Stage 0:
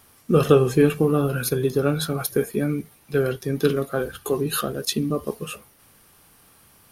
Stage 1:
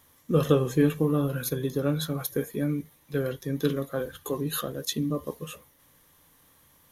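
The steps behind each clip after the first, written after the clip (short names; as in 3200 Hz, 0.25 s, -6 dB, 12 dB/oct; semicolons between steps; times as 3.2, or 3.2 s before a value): ripple EQ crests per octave 1.1, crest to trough 7 dB; gain -6.5 dB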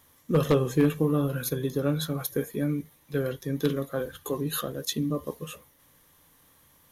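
wavefolder -13 dBFS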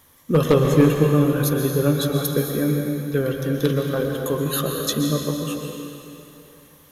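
reverb RT60 2.8 s, pre-delay 0.113 s, DRR 2 dB; gain +5.5 dB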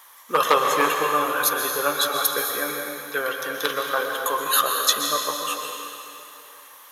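resonant high-pass 980 Hz, resonance Q 1.8; gain +5.5 dB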